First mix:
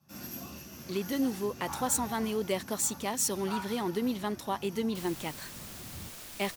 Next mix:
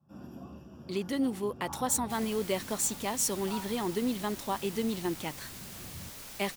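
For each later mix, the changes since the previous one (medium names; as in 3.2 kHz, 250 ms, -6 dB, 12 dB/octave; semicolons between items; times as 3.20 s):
first sound: add boxcar filter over 21 samples; second sound: entry -2.85 s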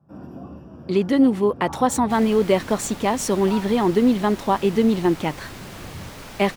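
first sound: send -6.5 dB; master: remove pre-emphasis filter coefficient 0.8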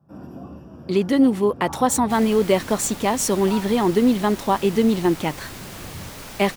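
master: add treble shelf 6 kHz +7.5 dB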